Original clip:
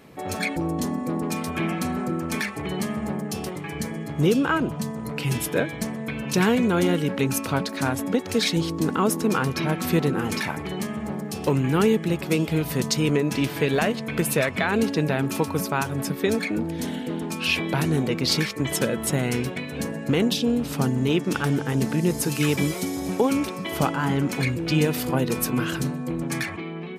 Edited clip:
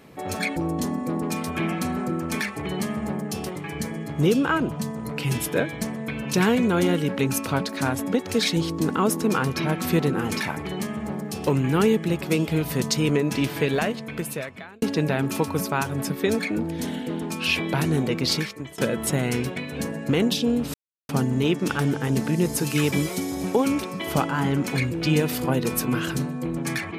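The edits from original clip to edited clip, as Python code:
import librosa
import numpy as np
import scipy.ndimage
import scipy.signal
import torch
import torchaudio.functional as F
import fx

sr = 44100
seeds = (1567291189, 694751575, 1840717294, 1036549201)

y = fx.edit(x, sr, fx.fade_out_span(start_s=13.59, length_s=1.23),
    fx.fade_out_to(start_s=18.24, length_s=0.54, floor_db=-23.5),
    fx.insert_silence(at_s=20.74, length_s=0.35), tone=tone)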